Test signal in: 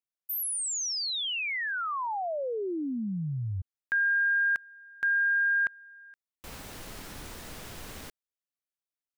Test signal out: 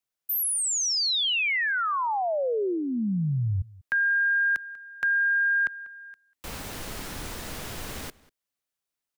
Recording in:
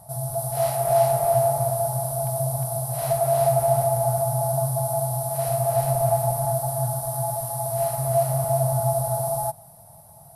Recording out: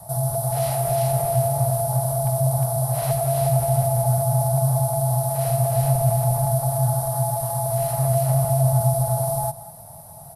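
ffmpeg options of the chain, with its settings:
-filter_complex "[0:a]asplit=2[s0][s1];[s1]adelay=192.4,volume=0.0794,highshelf=f=4000:g=-4.33[s2];[s0][s2]amix=inputs=2:normalize=0,acrossover=split=250|3300[s3][s4][s5];[s5]alimiter=level_in=2:limit=0.0631:level=0:latency=1:release=24,volume=0.501[s6];[s3][s4][s6]amix=inputs=3:normalize=0,acrossover=split=360|2600[s7][s8][s9];[s8]acompressor=threshold=0.0316:ratio=6:attack=1.4:release=161:knee=2.83:detection=peak[s10];[s7][s10][s9]amix=inputs=3:normalize=0,adynamicequalizer=threshold=0.00282:dfrequency=290:dqfactor=3:tfrequency=290:tqfactor=3:attack=5:release=100:ratio=0.375:range=2.5:mode=cutabove:tftype=bell,volume=2.11"

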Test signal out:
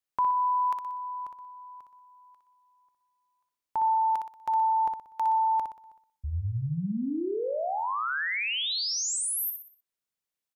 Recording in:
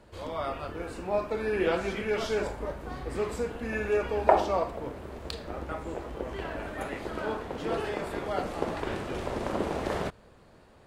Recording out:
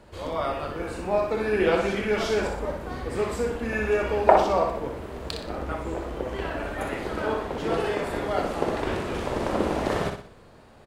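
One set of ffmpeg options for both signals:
-af "aecho=1:1:61|122|183|244|305:0.501|0.205|0.0842|0.0345|0.0142,volume=1.58"

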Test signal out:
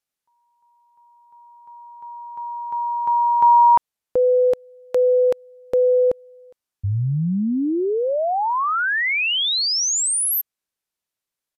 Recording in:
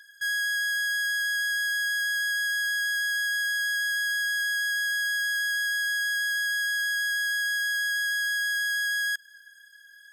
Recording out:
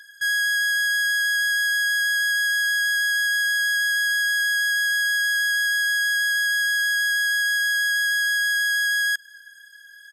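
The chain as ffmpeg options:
-af "aresample=32000,aresample=44100,volume=1.88"

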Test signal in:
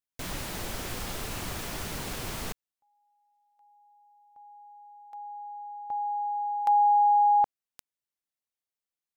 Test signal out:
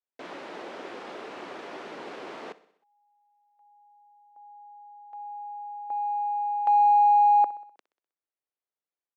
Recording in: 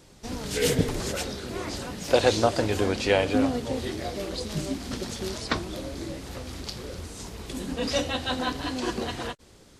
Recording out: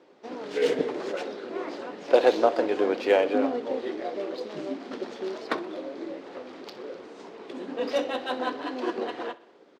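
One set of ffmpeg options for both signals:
-filter_complex "[0:a]highpass=f=350:w=0.5412,highpass=f=350:w=1.3066,aemphasis=mode=reproduction:type=riaa,adynamicsmooth=sensitivity=4.5:basefreq=4500,asplit=2[s0][s1];[s1]aecho=0:1:63|126|189|252|315:0.119|0.0677|0.0386|0.022|0.0125[s2];[s0][s2]amix=inputs=2:normalize=0"

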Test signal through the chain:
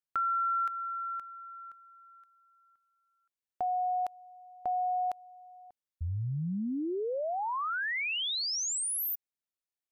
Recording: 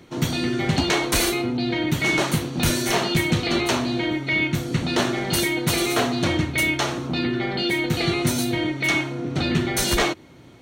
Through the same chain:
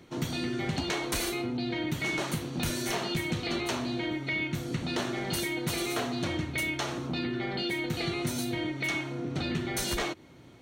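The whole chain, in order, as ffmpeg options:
-af "acompressor=threshold=0.0631:ratio=2.5,volume=0.531"

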